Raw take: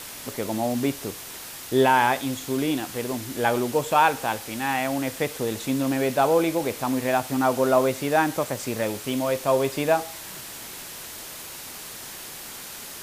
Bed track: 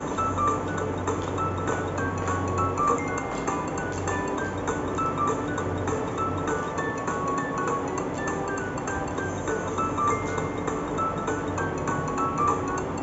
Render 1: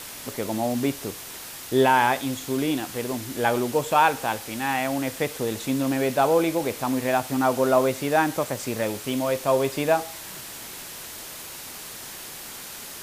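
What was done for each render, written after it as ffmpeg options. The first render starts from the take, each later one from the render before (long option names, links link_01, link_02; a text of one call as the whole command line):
ffmpeg -i in.wav -af anull out.wav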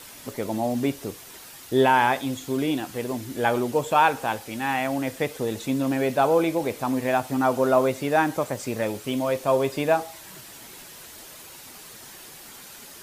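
ffmpeg -i in.wav -af "afftdn=noise_reduction=7:noise_floor=-39" out.wav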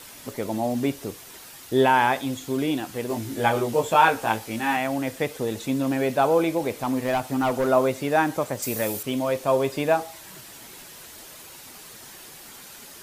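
ffmpeg -i in.wav -filter_complex "[0:a]asettb=1/sr,asplit=3[link_01][link_02][link_03];[link_01]atrim=end=3.084[link_04];[link_02]atrim=start=3.08:end=4.77,asetpts=PTS-STARTPTS,afade=type=in:duration=0.004:curve=qsin,afade=type=out:start_time=1.686:duration=0.004:curve=qsin,asplit=2[link_05][link_06];[link_06]adelay=18,volume=-2.5dB[link_07];[link_05][link_07]amix=inputs=2:normalize=0,atrim=end_sample=74529[link_08];[link_03]atrim=start=4.766[link_09];[link_04][link_08]acrossfade=duration=0.004:curve1=hsin:curve2=qsin[link_10];[link_10][link_09]acrossfade=duration=0.004:curve1=qsin:curve2=hsin,asplit=3[link_11][link_12][link_13];[link_11]afade=type=out:start_time=6.81:duration=0.02[link_14];[link_12]asoftclip=type=hard:threshold=-18.5dB,afade=type=in:start_time=6.81:duration=0.02,afade=type=out:start_time=7.67:duration=0.02[link_15];[link_13]afade=type=in:start_time=7.67:duration=0.02[link_16];[link_14][link_15][link_16]amix=inputs=3:normalize=0,asettb=1/sr,asplit=3[link_17][link_18][link_19];[link_17]atrim=end=8.624[link_20];[link_18]atrim=start=8.62:end=9.03,asetpts=PTS-STARTPTS,afade=type=in:duration=0.004:curve=qsin,afade=type=out:start_time=0.406:duration=0.004:curve=qsin,aemphasis=mode=production:type=50fm[link_21];[link_19]atrim=start=9.026[link_22];[link_20][link_21]acrossfade=duration=0.004:curve1=hsin:curve2=qsin[link_23];[link_23][link_22]acrossfade=duration=0.004:curve1=qsin:curve2=hsin" out.wav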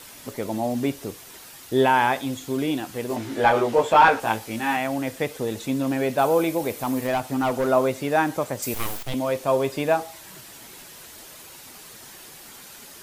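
ffmpeg -i in.wav -filter_complex "[0:a]asettb=1/sr,asplit=3[link_01][link_02][link_03];[link_01]atrim=end=3.164[link_04];[link_02]atrim=start=3.16:end=4.2,asetpts=PTS-STARTPTS,afade=type=in:duration=0.004:curve=qsin,afade=type=out:start_time=1.036:duration=0.004:curve=qsin,asplit=2[link_05][link_06];[link_06]highpass=frequency=720:poles=1,volume=14dB,asoftclip=type=tanh:threshold=-4.5dB[link_07];[link_05][link_07]amix=inputs=2:normalize=0,lowpass=frequency=1700:poles=1,volume=-6dB[link_08];[link_03]atrim=start=4.196[link_09];[link_04][link_08]acrossfade=duration=0.004:curve1=hsin:curve2=qsin[link_10];[link_10][link_09]acrossfade=duration=0.004:curve1=qsin:curve2=hsin,asettb=1/sr,asplit=3[link_11][link_12][link_13];[link_11]atrim=end=6.184[link_14];[link_12]atrim=start=6.18:end=7.07,asetpts=PTS-STARTPTS,afade=type=in:duration=0.004:curve=qsin,afade=type=out:start_time=0.886:duration=0.004:curve=qsin,highshelf=frequency=11000:gain=11[link_15];[link_13]atrim=start=7.066[link_16];[link_14][link_15]acrossfade=duration=0.004:curve1=hsin:curve2=qsin[link_17];[link_17][link_16]acrossfade=duration=0.004:curve1=qsin:curve2=hsin,asettb=1/sr,asplit=3[link_18][link_19][link_20];[link_18]atrim=end=8.744[link_21];[link_19]atrim=start=8.74:end=9.14,asetpts=PTS-STARTPTS,afade=type=in:duration=0.004:curve=qsin,afade=type=out:start_time=0.396:duration=0.004:curve=qsin,aeval=exprs='abs(val(0))':channel_layout=same[link_22];[link_20]atrim=start=9.136[link_23];[link_21][link_22]acrossfade=duration=0.004:curve1=hsin:curve2=qsin[link_24];[link_24][link_23]acrossfade=duration=0.004:curve1=qsin:curve2=hsin" out.wav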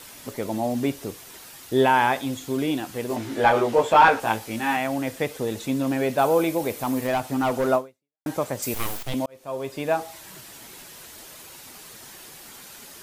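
ffmpeg -i in.wav -filter_complex "[0:a]asplit=3[link_01][link_02][link_03];[link_01]atrim=end=8.26,asetpts=PTS-STARTPTS,afade=type=out:start_time=7.75:duration=0.51:curve=exp[link_04];[link_02]atrim=start=8.26:end=9.26,asetpts=PTS-STARTPTS,afade=type=in:duration=0.004:curve=hsin,afade=type=out:start_time=0.996:duration=0.004:curve=hsin[link_05];[link_03]atrim=start=9.26,asetpts=PTS-STARTPTS,afade=type=in:duration=0.87[link_06];[link_04][link_05][link_06]concat=n=3:v=0:a=1" out.wav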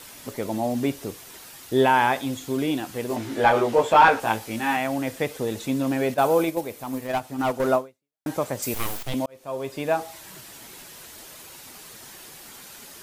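ffmpeg -i in.wav -filter_complex "[0:a]asettb=1/sr,asplit=3[link_01][link_02][link_03];[link_01]atrim=end=6.144[link_04];[link_02]atrim=start=6.14:end=7.6,asetpts=PTS-STARTPTS,afade=type=in:duration=0.004:curve=qsin,afade=type=out:start_time=1.456:duration=0.004:curve=qsin,agate=range=-7dB:threshold=-24dB:ratio=16:release=100:detection=peak[link_05];[link_03]atrim=start=7.596[link_06];[link_04][link_05]acrossfade=duration=0.004:curve1=hsin:curve2=qsin[link_07];[link_07][link_06]acrossfade=duration=0.004:curve1=qsin:curve2=hsin" out.wav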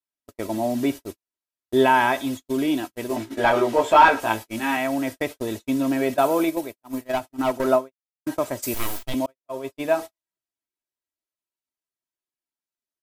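ffmpeg -i in.wav -af "agate=range=-54dB:threshold=-30dB:ratio=16:detection=peak,aecho=1:1:3.1:0.5" out.wav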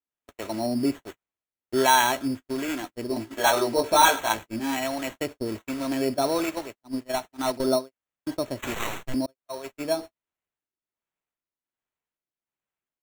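ffmpeg -i in.wav -filter_complex "[0:a]acrossover=split=550[link_01][link_02];[link_01]aeval=exprs='val(0)*(1-0.7/2+0.7/2*cos(2*PI*1.3*n/s))':channel_layout=same[link_03];[link_02]aeval=exprs='val(0)*(1-0.7/2-0.7/2*cos(2*PI*1.3*n/s))':channel_layout=same[link_04];[link_03][link_04]amix=inputs=2:normalize=0,acrusher=samples=9:mix=1:aa=0.000001" out.wav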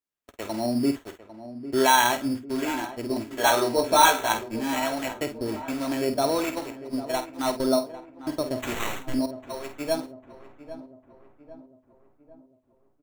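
ffmpeg -i in.wav -filter_complex "[0:a]asplit=2[link_01][link_02];[link_02]adelay=50,volume=-10dB[link_03];[link_01][link_03]amix=inputs=2:normalize=0,asplit=2[link_04][link_05];[link_05]adelay=800,lowpass=frequency=1300:poles=1,volume=-13dB,asplit=2[link_06][link_07];[link_07]adelay=800,lowpass=frequency=1300:poles=1,volume=0.54,asplit=2[link_08][link_09];[link_09]adelay=800,lowpass=frequency=1300:poles=1,volume=0.54,asplit=2[link_10][link_11];[link_11]adelay=800,lowpass=frequency=1300:poles=1,volume=0.54,asplit=2[link_12][link_13];[link_13]adelay=800,lowpass=frequency=1300:poles=1,volume=0.54,asplit=2[link_14][link_15];[link_15]adelay=800,lowpass=frequency=1300:poles=1,volume=0.54[link_16];[link_04][link_06][link_08][link_10][link_12][link_14][link_16]amix=inputs=7:normalize=0" out.wav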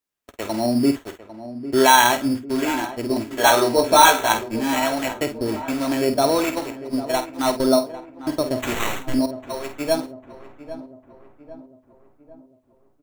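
ffmpeg -i in.wav -af "volume=5.5dB,alimiter=limit=-2dB:level=0:latency=1" out.wav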